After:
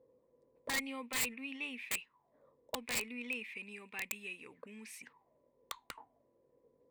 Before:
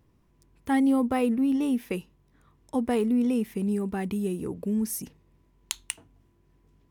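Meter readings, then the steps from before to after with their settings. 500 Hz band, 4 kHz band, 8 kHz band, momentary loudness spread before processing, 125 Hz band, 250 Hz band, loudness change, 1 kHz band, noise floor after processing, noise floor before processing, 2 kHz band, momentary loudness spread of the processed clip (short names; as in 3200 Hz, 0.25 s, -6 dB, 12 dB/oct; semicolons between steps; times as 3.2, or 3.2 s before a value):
-19.0 dB, -0.5 dB, -3.5 dB, 13 LU, -24.5 dB, -24.5 dB, -12.5 dB, -14.0 dB, -75 dBFS, -65 dBFS, +1.0 dB, 16 LU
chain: auto-wah 490–2500 Hz, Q 9.9, up, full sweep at -28.5 dBFS; wrapped overs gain 42 dB; ripple EQ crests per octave 0.99, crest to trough 6 dB; gain +13.5 dB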